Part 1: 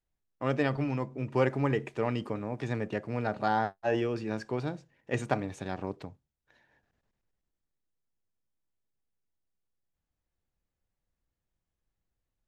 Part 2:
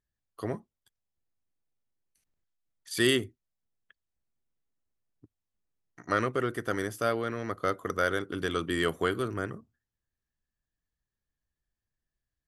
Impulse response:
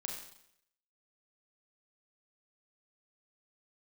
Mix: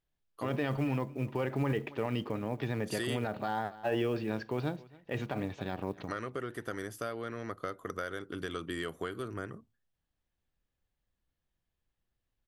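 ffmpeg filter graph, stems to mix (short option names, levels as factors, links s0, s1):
-filter_complex "[0:a]lowpass=f=4700:w=0.5412,lowpass=f=4700:w=1.3066,equalizer=f=3200:t=o:w=0.49:g=4,acrusher=bits=8:mode=log:mix=0:aa=0.000001,volume=1,asplit=2[s0][s1];[s1]volume=0.0708[s2];[1:a]acompressor=threshold=0.0355:ratio=6,volume=0.631[s3];[s2]aecho=0:1:275:1[s4];[s0][s3][s4]amix=inputs=3:normalize=0,alimiter=limit=0.0794:level=0:latency=1:release=48"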